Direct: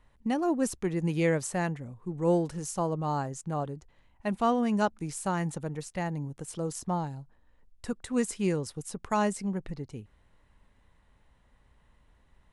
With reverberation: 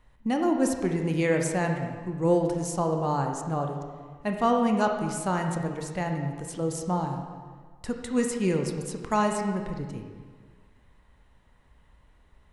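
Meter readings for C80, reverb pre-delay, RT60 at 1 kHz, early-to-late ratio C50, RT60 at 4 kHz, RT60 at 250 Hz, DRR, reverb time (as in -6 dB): 6.0 dB, 22 ms, 1.6 s, 4.5 dB, 1.3 s, 1.7 s, 3.0 dB, 1.6 s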